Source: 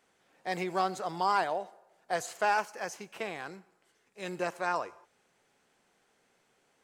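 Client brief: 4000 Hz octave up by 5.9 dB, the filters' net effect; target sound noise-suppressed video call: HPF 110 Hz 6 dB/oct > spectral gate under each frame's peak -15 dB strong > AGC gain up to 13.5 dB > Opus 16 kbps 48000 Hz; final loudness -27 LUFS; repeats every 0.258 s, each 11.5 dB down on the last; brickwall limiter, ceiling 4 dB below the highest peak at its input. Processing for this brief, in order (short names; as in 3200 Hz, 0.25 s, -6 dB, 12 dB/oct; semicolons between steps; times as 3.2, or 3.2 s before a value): bell 4000 Hz +7.5 dB; limiter -19.5 dBFS; HPF 110 Hz 6 dB/oct; feedback echo 0.258 s, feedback 27%, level -11.5 dB; spectral gate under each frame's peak -15 dB strong; AGC gain up to 13.5 dB; gain +8.5 dB; Opus 16 kbps 48000 Hz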